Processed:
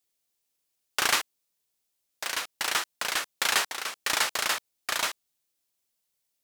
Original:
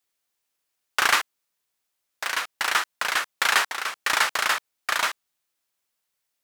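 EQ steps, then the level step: bell 1400 Hz -8.5 dB 2 oct; +1.0 dB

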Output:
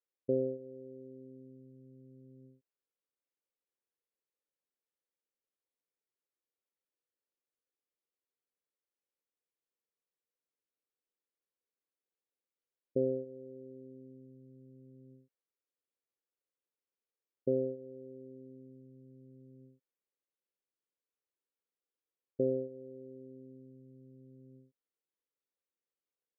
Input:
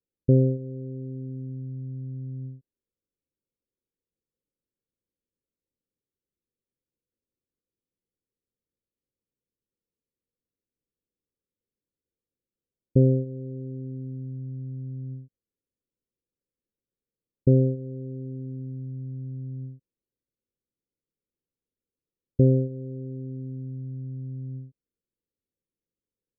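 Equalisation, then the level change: HPF 540 Hz 12 dB/oct; air absorption 340 m; 0.0 dB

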